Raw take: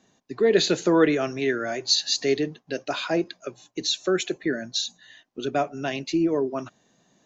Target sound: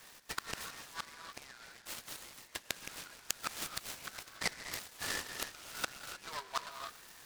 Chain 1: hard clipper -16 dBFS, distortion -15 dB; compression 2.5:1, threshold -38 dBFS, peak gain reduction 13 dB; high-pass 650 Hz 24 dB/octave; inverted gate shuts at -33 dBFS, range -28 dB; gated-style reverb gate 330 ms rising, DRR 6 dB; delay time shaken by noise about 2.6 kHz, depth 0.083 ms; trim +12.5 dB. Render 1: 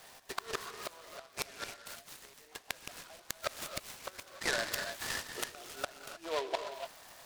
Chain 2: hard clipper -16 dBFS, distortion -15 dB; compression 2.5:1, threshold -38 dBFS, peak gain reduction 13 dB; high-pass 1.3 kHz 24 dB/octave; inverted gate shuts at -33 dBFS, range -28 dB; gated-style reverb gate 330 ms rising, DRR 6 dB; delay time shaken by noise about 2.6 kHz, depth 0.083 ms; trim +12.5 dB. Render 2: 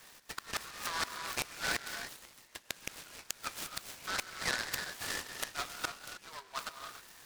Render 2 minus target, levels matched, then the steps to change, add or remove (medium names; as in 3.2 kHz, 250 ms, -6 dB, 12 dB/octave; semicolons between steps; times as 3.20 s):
compression: peak gain reduction +5 dB
change: compression 2.5:1, threshold -30 dBFS, peak gain reduction 8 dB